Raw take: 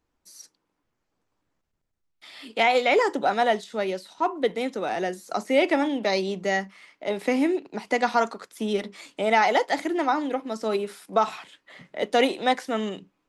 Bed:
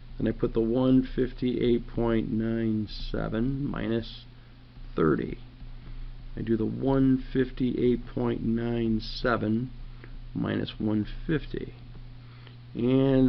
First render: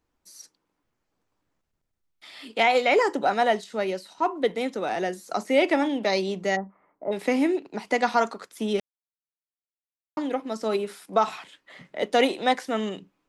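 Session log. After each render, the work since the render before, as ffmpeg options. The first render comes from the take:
ffmpeg -i in.wav -filter_complex "[0:a]asettb=1/sr,asplit=3[link_01][link_02][link_03];[link_01]atrim=end=2.714[link_04];[link_02]atrim=start=2.71:end=4.27,asetpts=PTS-STARTPTS,afade=type=in:duration=0.004:curve=qsin,afade=type=out:start_time=1.556:duration=0.004:curve=qsin,bandreject=frequency=3500:width=12[link_05];[link_03]atrim=start=4.266[link_06];[link_04][link_05]acrossfade=duration=0.004:curve1=hsin:curve2=qsin[link_07];[link_07][link_06]acrossfade=duration=0.004:curve1=qsin:curve2=hsin,asplit=3[link_08][link_09][link_10];[link_08]afade=type=out:start_time=6.55:duration=0.02[link_11];[link_09]lowpass=frequency=1100:width=0.5412,lowpass=frequency=1100:width=1.3066,afade=type=in:start_time=6.55:duration=0.02,afade=type=out:start_time=7.11:duration=0.02[link_12];[link_10]afade=type=in:start_time=7.11:duration=0.02[link_13];[link_11][link_12][link_13]amix=inputs=3:normalize=0,asplit=3[link_14][link_15][link_16];[link_14]atrim=end=8.8,asetpts=PTS-STARTPTS,afade=type=out:start_time=8.796:duration=0.004:curve=hsin[link_17];[link_15]atrim=start=8.8:end=10.17,asetpts=PTS-STARTPTS,volume=0[link_18];[link_16]atrim=start=10.17,asetpts=PTS-STARTPTS,afade=type=in:duration=0.004:curve=hsin[link_19];[link_17][link_18][link_19]concat=n=3:v=0:a=1" out.wav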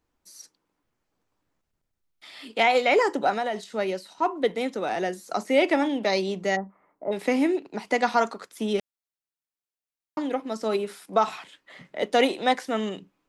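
ffmpeg -i in.wav -filter_complex "[0:a]asettb=1/sr,asplit=3[link_01][link_02][link_03];[link_01]atrim=end=3.304[link_04];[link_02]atrim=start=3.3:end=3.74,asetpts=PTS-STARTPTS,afade=type=in:duration=0.004:curve=qsin,afade=type=out:start_time=0.436:duration=0.004:curve=qsin,acompressor=threshold=-23dB:ratio=6:attack=3.2:release=140:knee=1:detection=peak[link_05];[link_03]atrim=start=3.736[link_06];[link_04][link_05]acrossfade=duration=0.004:curve1=hsin:curve2=qsin[link_07];[link_07][link_06]acrossfade=duration=0.004:curve1=qsin:curve2=hsin" out.wav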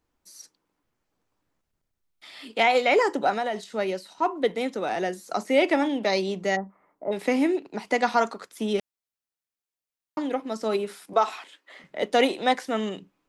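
ffmpeg -i in.wav -filter_complex "[0:a]asettb=1/sr,asplit=3[link_01][link_02][link_03];[link_01]atrim=end=11.134[link_04];[link_02]atrim=start=11.13:end=11.84,asetpts=PTS-STARTPTS,afade=type=in:duration=0.004:curve=qsin,afade=type=out:start_time=0.706:duration=0.004:curve=qsin,highpass=frequency=280:width=0.5412,highpass=frequency=280:width=1.3066[link_05];[link_03]atrim=start=11.836[link_06];[link_04][link_05]acrossfade=duration=0.004:curve1=hsin:curve2=qsin[link_07];[link_07][link_06]acrossfade=duration=0.004:curve1=qsin:curve2=hsin" out.wav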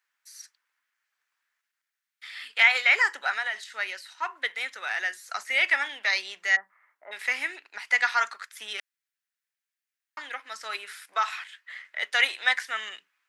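ffmpeg -i in.wav -af "highpass=frequency=1700:width_type=q:width=2.8" out.wav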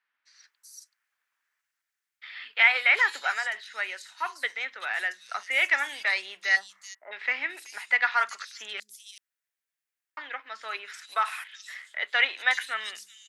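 ffmpeg -i in.wav -filter_complex "[0:a]acrossover=split=160|4300[link_01][link_02][link_03];[link_01]adelay=140[link_04];[link_03]adelay=380[link_05];[link_04][link_02][link_05]amix=inputs=3:normalize=0" out.wav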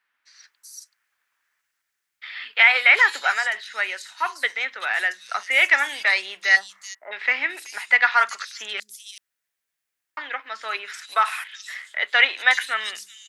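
ffmpeg -i in.wav -af "volume=6.5dB,alimiter=limit=-3dB:level=0:latency=1" out.wav

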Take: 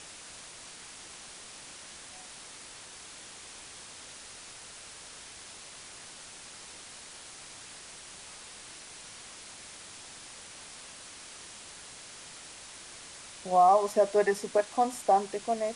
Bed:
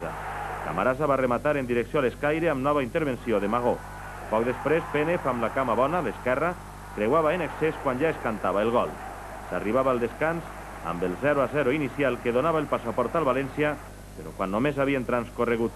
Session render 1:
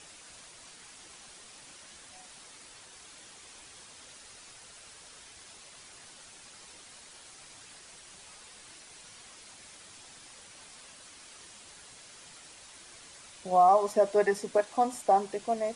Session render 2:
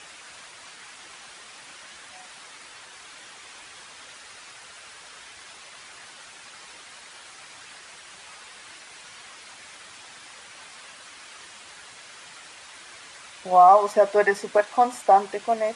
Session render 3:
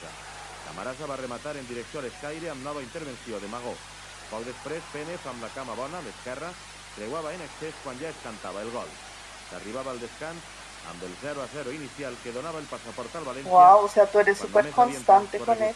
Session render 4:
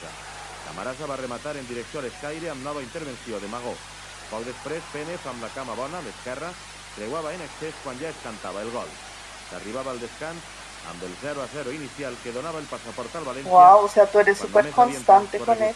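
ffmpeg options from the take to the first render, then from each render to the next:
ffmpeg -i in.wav -af "afftdn=noise_reduction=6:noise_floor=-48" out.wav
ffmpeg -i in.wav -af "highpass=47,equalizer=frequency=1600:width_type=o:width=3:gain=11" out.wav
ffmpeg -i in.wav -i bed.wav -filter_complex "[1:a]volume=-11dB[link_01];[0:a][link_01]amix=inputs=2:normalize=0" out.wav
ffmpeg -i in.wav -af "volume=3dB,alimiter=limit=-2dB:level=0:latency=1" out.wav

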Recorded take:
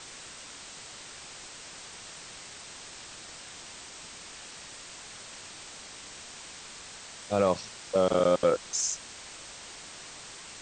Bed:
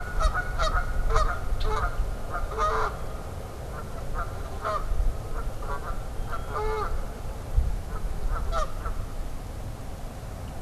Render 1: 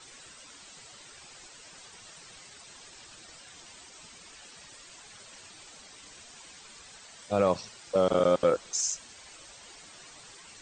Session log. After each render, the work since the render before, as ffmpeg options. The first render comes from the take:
ffmpeg -i in.wav -af "afftdn=noise_reduction=10:noise_floor=-46" out.wav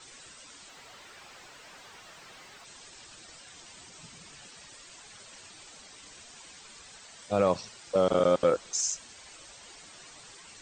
ffmpeg -i in.wav -filter_complex "[0:a]asplit=3[link_01][link_02][link_03];[link_01]afade=type=out:start_time=0.68:duration=0.02[link_04];[link_02]asplit=2[link_05][link_06];[link_06]highpass=frequency=720:poles=1,volume=20dB,asoftclip=type=tanh:threshold=-37.5dB[link_07];[link_05][link_07]amix=inputs=2:normalize=0,lowpass=frequency=1600:poles=1,volume=-6dB,afade=type=in:start_time=0.68:duration=0.02,afade=type=out:start_time=2.64:duration=0.02[link_08];[link_03]afade=type=in:start_time=2.64:duration=0.02[link_09];[link_04][link_08][link_09]amix=inputs=3:normalize=0,asettb=1/sr,asplit=3[link_10][link_11][link_12];[link_10]atrim=end=3.774[link_13];[link_11]atrim=start=3.77:end=4.48,asetpts=PTS-STARTPTS,afade=type=in:duration=0.004:curve=qsin,afade=type=out:start_time=0.706:duration=0.004:curve=qsin,equalizer=frequency=140:width=1.5:gain=12.5[link_14];[link_12]atrim=start=4.476[link_15];[link_13][link_14]acrossfade=duration=0.004:curve1=hsin:curve2=qsin[link_16];[link_16][link_15]acrossfade=duration=0.004:curve1=qsin:curve2=hsin" out.wav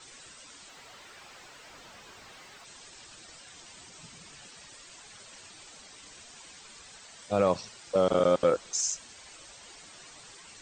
ffmpeg -i in.wav -filter_complex "[0:a]asettb=1/sr,asplit=3[link_01][link_02][link_03];[link_01]atrim=end=1.694[link_04];[link_02]atrim=start=1.69:end=2.29,asetpts=PTS-STARTPTS,afade=type=in:duration=0.004:curve=qsin,afade=type=out:start_time=0.596:duration=0.004:curve=qsin,afreqshift=-250[link_05];[link_03]atrim=start=2.286[link_06];[link_04][link_05]acrossfade=duration=0.004:curve1=hsin:curve2=qsin[link_07];[link_07][link_06]acrossfade=duration=0.004:curve1=qsin:curve2=hsin" out.wav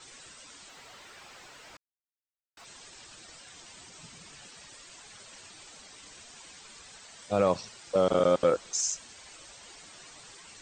ffmpeg -i in.wav -filter_complex "[0:a]asplit=3[link_01][link_02][link_03];[link_01]atrim=end=1.77,asetpts=PTS-STARTPTS,afade=type=out:start_time=1.766:duration=0.004:curve=hsin[link_04];[link_02]atrim=start=1.77:end=2.57,asetpts=PTS-STARTPTS,volume=0[link_05];[link_03]atrim=start=2.57,asetpts=PTS-STARTPTS,afade=type=in:duration=0.004:curve=hsin[link_06];[link_04][link_05][link_06]concat=n=3:v=0:a=1" out.wav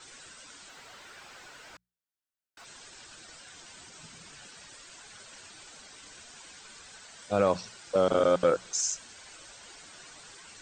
ffmpeg -i in.wav -af "equalizer=frequency=1500:width=7.9:gain=6.5,bandreject=frequency=60:width_type=h:width=6,bandreject=frequency=120:width_type=h:width=6,bandreject=frequency=180:width_type=h:width=6" out.wav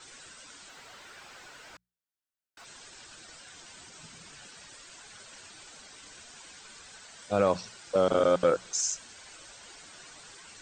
ffmpeg -i in.wav -af anull out.wav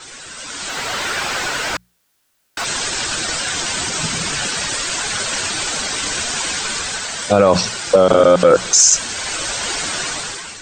ffmpeg -i in.wav -af "dynaudnorm=framelen=260:gausssize=5:maxgain=14.5dB,alimiter=level_in=13.5dB:limit=-1dB:release=50:level=0:latency=1" out.wav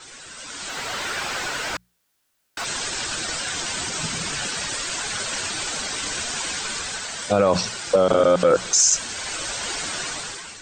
ffmpeg -i in.wav -af "volume=-6dB" out.wav

